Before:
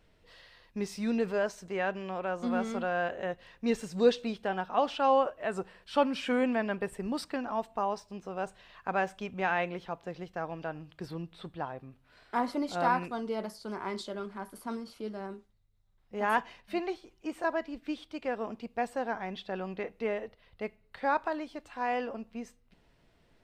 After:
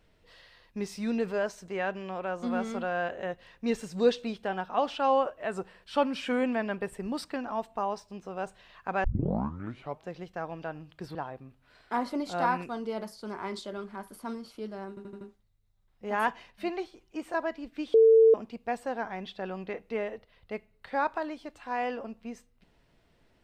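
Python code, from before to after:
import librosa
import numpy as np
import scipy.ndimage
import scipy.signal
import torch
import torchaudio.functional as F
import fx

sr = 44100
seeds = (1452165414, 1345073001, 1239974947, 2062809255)

y = fx.edit(x, sr, fx.tape_start(start_s=9.04, length_s=1.03),
    fx.cut(start_s=11.15, length_s=0.42),
    fx.stutter(start_s=15.31, slice_s=0.08, count=5),
    fx.bleep(start_s=18.04, length_s=0.4, hz=448.0, db=-14.5), tone=tone)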